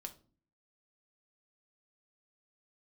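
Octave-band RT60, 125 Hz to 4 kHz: 0.70, 0.70, 0.45, 0.35, 0.30, 0.30 s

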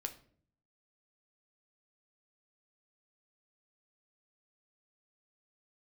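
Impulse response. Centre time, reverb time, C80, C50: 8 ms, 0.55 s, 18.0 dB, 13.5 dB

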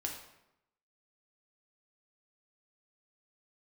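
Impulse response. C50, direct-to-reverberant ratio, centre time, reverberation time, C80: 5.0 dB, 0.0 dB, 33 ms, 0.85 s, 8.0 dB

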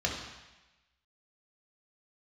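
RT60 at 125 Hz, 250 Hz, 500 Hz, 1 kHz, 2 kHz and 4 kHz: 1.0, 1.0, 1.0, 1.1, 1.2, 1.1 s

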